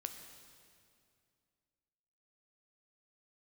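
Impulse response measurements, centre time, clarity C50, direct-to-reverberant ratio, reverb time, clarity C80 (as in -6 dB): 36 ms, 7.5 dB, 6.0 dB, 2.4 s, 8.0 dB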